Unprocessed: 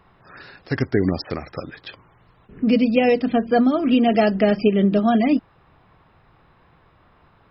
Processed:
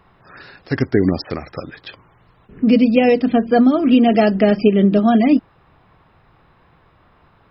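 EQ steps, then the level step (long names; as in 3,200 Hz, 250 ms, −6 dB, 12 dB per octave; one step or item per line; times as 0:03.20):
dynamic equaliser 280 Hz, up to +3 dB, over −25 dBFS, Q 1
+2.0 dB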